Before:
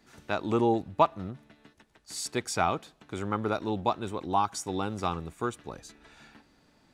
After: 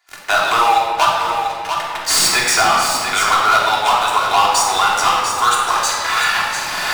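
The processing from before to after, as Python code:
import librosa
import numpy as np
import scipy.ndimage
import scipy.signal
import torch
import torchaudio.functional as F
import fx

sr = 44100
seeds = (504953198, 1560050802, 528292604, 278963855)

y = fx.recorder_agc(x, sr, target_db=-12.5, rise_db_per_s=13.0, max_gain_db=30)
y = scipy.signal.sosfilt(scipy.signal.butter(4, 820.0, 'highpass', fs=sr, output='sos'), y)
y = fx.leveller(y, sr, passes=5)
y = y + 10.0 ** (-9.5 / 20.0) * np.pad(y, (int(693 * sr / 1000.0), 0))[:len(y)]
y = fx.room_shoebox(y, sr, seeds[0], volume_m3=1500.0, walls='mixed', distance_m=3.2)
y = fx.band_squash(y, sr, depth_pct=40)
y = y * 10.0 ** (-1.5 / 20.0)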